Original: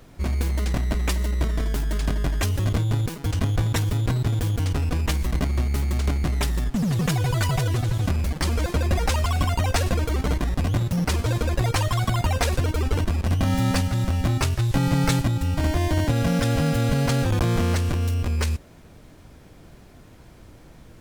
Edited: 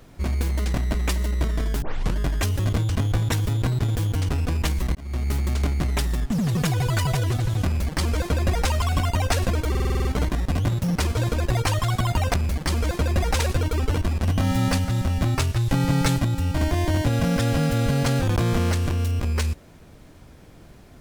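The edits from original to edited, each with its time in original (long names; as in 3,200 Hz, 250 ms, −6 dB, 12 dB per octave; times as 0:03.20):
0:01.82: tape start 0.35 s
0:02.89–0:03.33: remove
0:05.39–0:05.72: fade in
0:08.09–0:09.15: duplicate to 0:12.43
0:10.14: stutter 0.05 s, 8 plays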